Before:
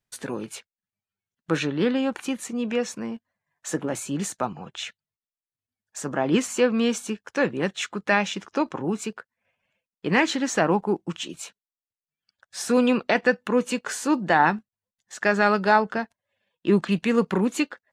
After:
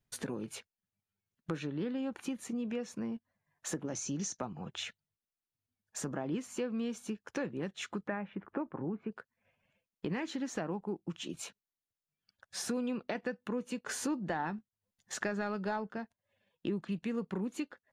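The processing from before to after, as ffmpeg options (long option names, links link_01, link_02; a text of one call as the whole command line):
ffmpeg -i in.wav -filter_complex "[0:a]asettb=1/sr,asplit=3[link_01][link_02][link_03];[link_01]atrim=end=3.854[link_04];[link_02]atrim=start=3.85:end=4.4,asetpts=PTS-STARTPTS,afade=type=in:duration=0.004:curve=qsin,afade=type=out:start_time=0.546:duration=0.004:curve=qsin,lowpass=frequency=6000:width_type=q:width=8[link_05];[link_03]atrim=start=4.396[link_06];[link_04][link_05]acrossfade=duration=0.004:curve1=hsin:curve2=qsin[link_07];[link_07][link_06]acrossfade=duration=0.004:curve1=qsin:curve2=hsin,asplit=3[link_08][link_09][link_10];[link_08]afade=type=out:start_time=8.06:duration=0.02[link_11];[link_09]lowpass=frequency=2000:width=0.5412,lowpass=frequency=2000:width=1.3066,afade=type=in:start_time=8.06:duration=0.02,afade=type=out:start_time=9.11:duration=0.02[link_12];[link_10]afade=type=in:start_time=9.11:duration=0.02[link_13];[link_11][link_12][link_13]amix=inputs=3:normalize=0,asettb=1/sr,asplit=3[link_14][link_15][link_16];[link_14]atrim=end=13.894[link_17];[link_15]atrim=start=13.89:end=15.89,asetpts=PTS-STARTPTS,afade=type=in:duration=0.004:curve=qsin,afade=type=out:start_time=1.996:duration=0.004:curve=qsin,acontrast=21[link_18];[link_16]atrim=start=15.886[link_19];[link_17][link_18]acrossfade=duration=0.004:curve1=hsin:curve2=qsin[link_20];[link_20][link_19]acrossfade=duration=0.004:curve1=qsin:curve2=hsin,lowshelf=frequency=440:gain=8.5,bandreject=frequency=7900:width=14,acompressor=threshold=-33dB:ratio=4,volume=-3.5dB" out.wav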